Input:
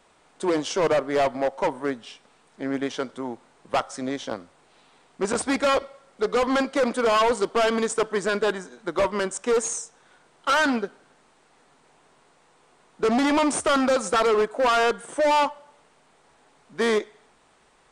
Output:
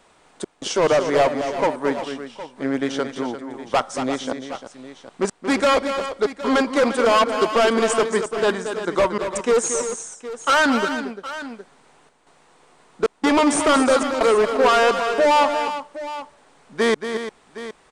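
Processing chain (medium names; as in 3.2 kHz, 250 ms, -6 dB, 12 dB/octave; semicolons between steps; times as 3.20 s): trance gate "xxxxx..xxxx" 170 bpm -60 dB; multi-tap echo 229/347/765 ms -9/-11.5/-14.5 dB; trim +4 dB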